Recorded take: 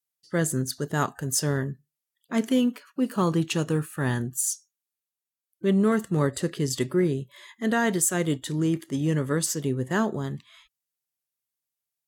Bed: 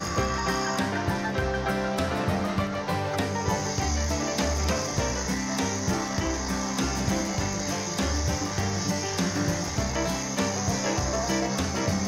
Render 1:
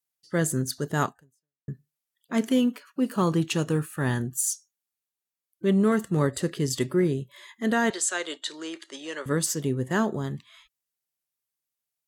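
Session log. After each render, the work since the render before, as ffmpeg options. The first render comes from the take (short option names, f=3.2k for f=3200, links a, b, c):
-filter_complex "[0:a]asettb=1/sr,asplit=3[a][b][c];[a]atrim=end=7.904[d];[b]atrim=start=7.9:end=9.26,asetpts=PTS-STARTPTS,afade=t=in:d=0.004:c=qsin,afade=t=out:st=1.356:d=0.004:c=qsin,highpass=f=440:w=0.5412,highpass=f=440:w=1.3066,equalizer=f=460:t=q:w=4:g=-5,equalizer=f=740:t=q:w=4:g=-3,equalizer=f=1.5k:t=q:w=4:g=4,equalizer=f=2.8k:t=q:w=4:g=3,equalizer=f=4.1k:t=q:w=4:g=9,lowpass=f=8.4k:w=0.5412,lowpass=f=8.4k:w=1.3066[e];[c]atrim=start=9.256[f];[d][e]acrossfade=d=0.004:c1=hsin:c2=qsin[g];[g][f]acrossfade=d=0.004:c1=qsin:c2=hsin,asplit=2[h][i];[h]atrim=end=1.68,asetpts=PTS-STARTPTS,afade=t=out:st=1.07:d=0.61:c=exp[j];[i]atrim=start=1.68,asetpts=PTS-STARTPTS,afade=t=in:d=0.004:c=hsin[k];[j][k]concat=n=2:v=0:a=1"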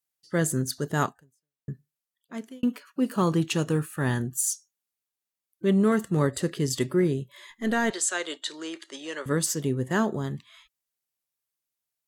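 -filter_complex "[0:a]asettb=1/sr,asplit=3[a][b][c];[a]atrim=end=7.504[d];[b]atrim=start=7.5:end=7.92,asetpts=PTS-STARTPTS,afade=t=in:d=0.004:c=qsin,afade=t=out:st=0.416:d=0.004:c=qsin,aeval=exprs='if(lt(val(0),0),0.708*val(0),val(0))':c=same[e];[c]atrim=start=7.916[f];[d][e]acrossfade=d=0.004:c1=hsin:c2=qsin[g];[g][f]acrossfade=d=0.004:c1=qsin:c2=hsin,asplit=2[h][i];[h]atrim=end=2.63,asetpts=PTS-STARTPTS,afade=t=out:st=1.72:d=0.91[j];[i]atrim=start=2.63,asetpts=PTS-STARTPTS,afade=t=in:d=0.004:c=hsin[k];[j][k]concat=n=2:v=0:a=1"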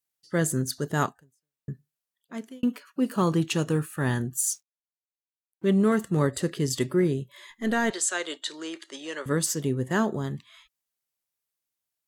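-filter_complex "[0:a]asettb=1/sr,asplit=3[a][b][c];[a]atrim=end=4.524[d];[b]atrim=start=4.52:end=6.04,asetpts=PTS-STARTPTS,afade=t=in:d=0.004:c=qsin,afade=t=out:st=1.516:d=0.004:c=qsin,aeval=exprs='sgn(val(0))*max(abs(val(0))-0.00158,0)':c=same[e];[c]atrim=start=6.036[f];[d][e]acrossfade=d=0.004:c1=hsin:c2=qsin[g];[g][f]acrossfade=d=0.004:c1=qsin:c2=hsin"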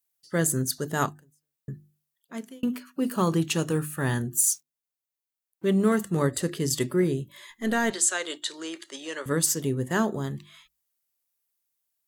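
-af "highshelf=f=9k:g=9,bandreject=f=50:t=h:w=6,bandreject=f=100:t=h:w=6,bandreject=f=150:t=h:w=6,bandreject=f=200:t=h:w=6,bandreject=f=250:t=h:w=6,bandreject=f=300:t=h:w=6,bandreject=f=350:t=h:w=6"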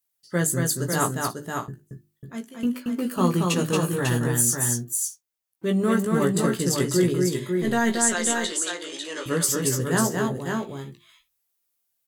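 -filter_complex "[0:a]asplit=2[a][b];[b]adelay=17,volume=-5.5dB[c];[a][c]amix=inputs=2:normalize=0,aecho=1:1:228|547|605:0.668|0.562|0.112"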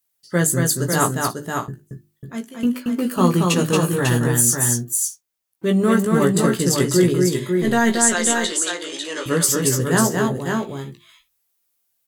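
-af "volume=5dB,alimiter=limit=-3dB:level=0:latency=1"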